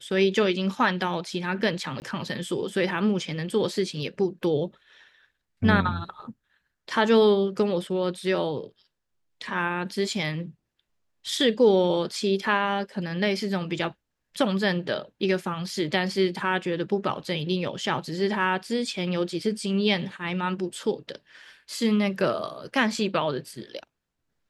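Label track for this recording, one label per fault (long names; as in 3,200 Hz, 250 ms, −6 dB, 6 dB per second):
2.000000	2.020000	drop-out 19 ms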